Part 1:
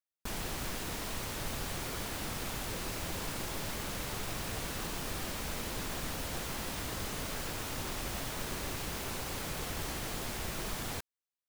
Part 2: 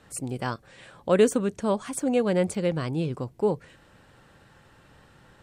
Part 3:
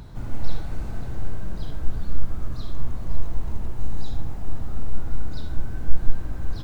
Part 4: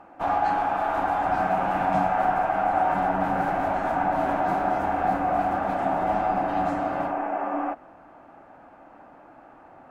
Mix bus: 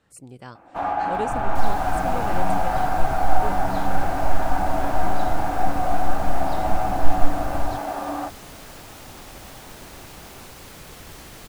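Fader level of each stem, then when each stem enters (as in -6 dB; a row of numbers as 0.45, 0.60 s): -3.5, -10.5, 0.0, -1.0 dB; 1.30, 0.00, 1.15, 0.55 s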